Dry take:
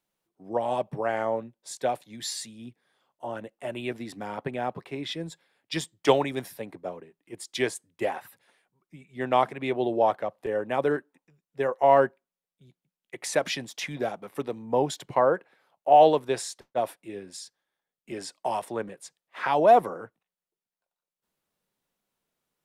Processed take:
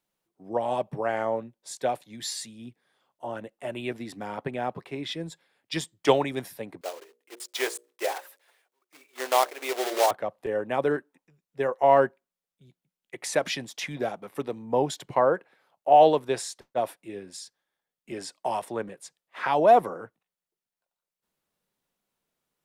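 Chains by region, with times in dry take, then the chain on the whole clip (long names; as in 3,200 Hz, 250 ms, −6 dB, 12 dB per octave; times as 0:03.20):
0:06.81–0:10.11: one scale factor per block 3 bits + high-pass filter 390 Hz 24 dB per octave + mains-hum notches 60/120/180/240/300/360/420/480/540/600 Hz
whole clip: no processing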